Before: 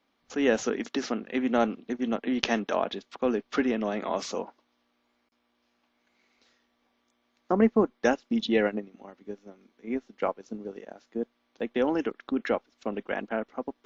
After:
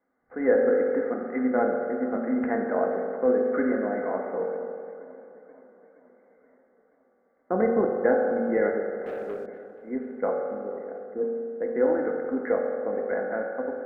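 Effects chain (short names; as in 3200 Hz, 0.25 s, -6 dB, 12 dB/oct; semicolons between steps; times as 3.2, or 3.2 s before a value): rippled Chebyshev low-pass 2100 Hz, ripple 6 dB; reverb RT60 2.3 s, pre-delay 3 ms, DRR 0 dB; 9.06–9.46 sample leveller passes 2; warbling echo 0.476 s, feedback 60%, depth 85 cents, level -20 dB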